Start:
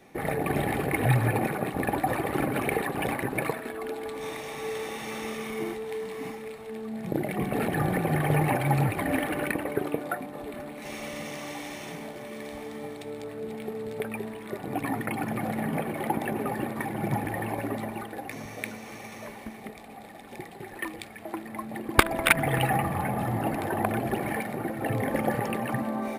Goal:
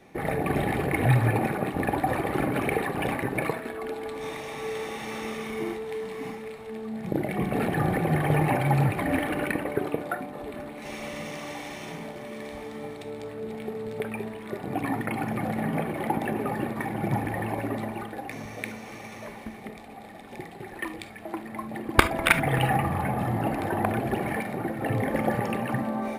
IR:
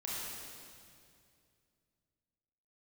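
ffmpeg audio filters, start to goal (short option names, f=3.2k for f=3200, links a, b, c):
-filter_complex "[0:a]highshelf=f=7.6k:g=-6,asplit=2[a][b];[1:a]atrim=start_sample=2205,atrim=end_sample=3528,lowshelf=f=180:g=7[c];[b][c]afir=irnorm=-1:irlink=0,volume=-5.5dB[d];[a][d]amix=inputs=2:normalize=0,volume=-1.5dB"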